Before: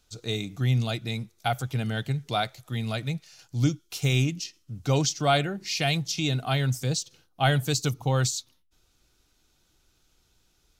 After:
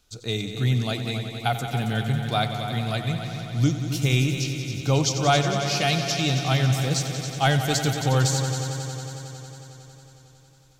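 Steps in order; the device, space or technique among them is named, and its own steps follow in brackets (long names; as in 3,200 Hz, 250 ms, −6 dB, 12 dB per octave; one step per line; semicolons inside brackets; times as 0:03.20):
multi-head tape echo (echo machine with several playback heads 91 ms, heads all three, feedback 73%, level −13 dB; tape wow and flutter 23 cents)
level +2 dB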